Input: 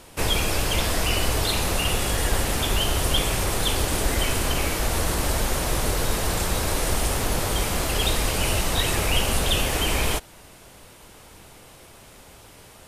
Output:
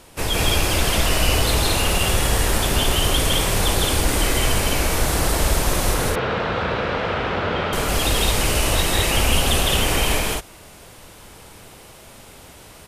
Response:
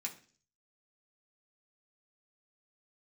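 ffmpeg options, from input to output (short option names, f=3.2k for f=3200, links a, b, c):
-filter_complex "[0:a]asettb=1/sr,asplit=3[a][b][c];[a]atrim=end=5.944[d];[b]atrim=start=5.94:end=7.73,asetpts=PTS-STARTPTS,afade=t=in:d=0.004:c=qsin,afade=t=out:st=1.786:d=0.004:c=qsin,highpass=110,equalizer=f=310:t=q:w=4:g=-4,equalizer=f=490:t=q:w=4:g=4,equalizer=f=1.4k:t=q:w=4:g=6,lowpass=f=3.3k:w=0.5412,lowpass=f=3.3k:w=1.3066[e];[c]atrim=start=7.726[f];[d][e]acrossfade=d=0.004:c1=hsin:c2=qsin[g];[g][f]acrossfade=d=0.004:c1=qsin:c2=hsin,aecho=1:1:157.4|212.8:0.891|0.891"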